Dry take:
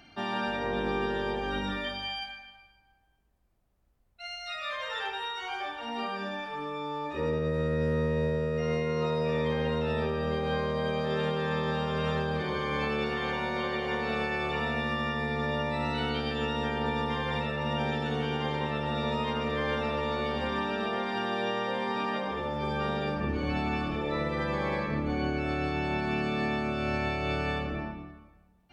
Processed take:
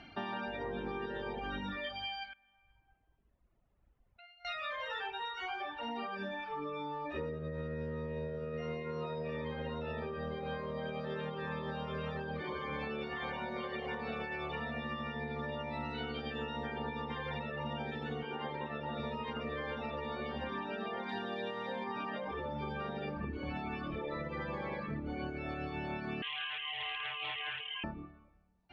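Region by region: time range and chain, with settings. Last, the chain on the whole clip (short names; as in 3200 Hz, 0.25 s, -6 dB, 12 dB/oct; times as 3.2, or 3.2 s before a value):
2.33–4.45 LPF 3600 Hz 24 dB/oct + compressor 10:1, threshold -56 dBFS
18.23–19 HPF 140 Hz 6 dB/oct + high shelf 6300 Hz -11 dB
21.09–21.84 bell 4000 Hz +7.5 dB 0.29 oct + backlash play -45.5 dBFS + doubler 30 ms -12 dB
26.22–27.84 HPF 260 Hz 24 dB/oct + inverted band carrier 3400 Hz + Doppler distortion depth 0.2 ms
whole clip: reverb removal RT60 1.2 s; LPF 3500 Hz 12 dB/oct; compressor, threshold -39 dBFS; gain +2.5 dB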